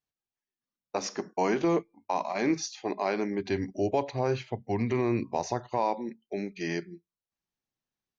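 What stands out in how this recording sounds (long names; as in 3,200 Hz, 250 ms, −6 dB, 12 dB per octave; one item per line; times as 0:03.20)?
background noise floor −95 dBFS
spectral slope −5.5 dB per octave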